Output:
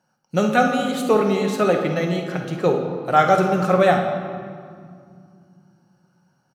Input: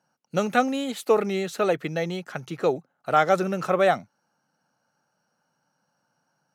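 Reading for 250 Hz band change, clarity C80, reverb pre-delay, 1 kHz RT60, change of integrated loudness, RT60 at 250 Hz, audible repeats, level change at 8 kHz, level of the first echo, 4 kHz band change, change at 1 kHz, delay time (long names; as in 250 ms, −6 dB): +7.0 dB, 6.5 dB, 5 ms, 2.2 s, +5.0 dB, 3.6 s, 1, +3.0 dB, −11.5 dB, +4.0 dB, +5.5 dB, 51 ms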